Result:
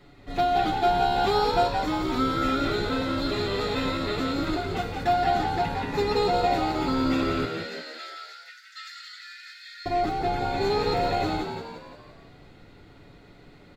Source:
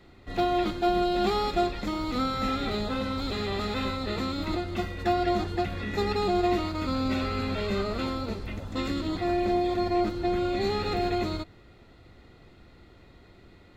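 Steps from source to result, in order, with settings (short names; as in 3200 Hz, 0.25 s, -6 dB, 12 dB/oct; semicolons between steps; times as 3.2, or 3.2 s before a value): 7.45–9.86 rippled Chebyshev high-pass 1300 Hz, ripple 9 dB; comb 7 ms, depth 73%; frequency-shifting echo 0.173 s, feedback 51%, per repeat +71 Hz, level -6 dB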